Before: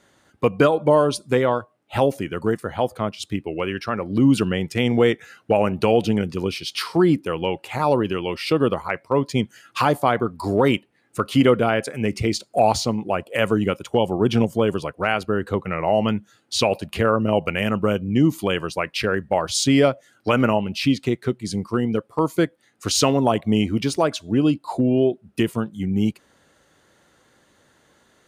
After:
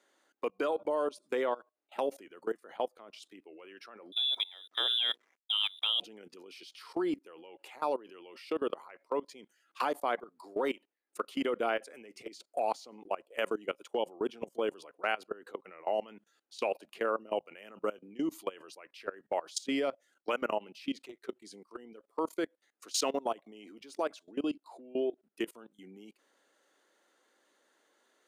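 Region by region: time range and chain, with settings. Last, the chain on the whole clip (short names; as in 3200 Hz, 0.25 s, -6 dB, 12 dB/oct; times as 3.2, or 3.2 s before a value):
4.12–6 inverted band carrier 3700 Hz + notches 60/120/180/240/300/360/420/480 Hz + backlash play -36.5 dBFS
19.71–20.3 expander -56 dBFS + bell 120 Hz +5.5 dB 1.2 oct
whole clip: HPF 300 Hz 24 dB/oct; level quantiser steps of 21 dB; gain -9 dB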